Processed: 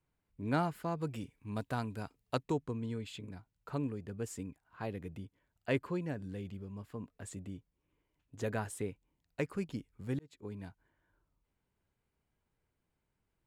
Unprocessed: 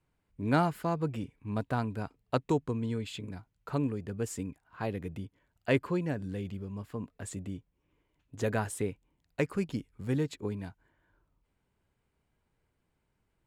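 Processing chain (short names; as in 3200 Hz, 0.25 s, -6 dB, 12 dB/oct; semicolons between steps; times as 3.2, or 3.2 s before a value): 0.98–2.43 high shelf 3300 Hz +9 dB; 10.19–10.64 fade in; gain -5.5 dB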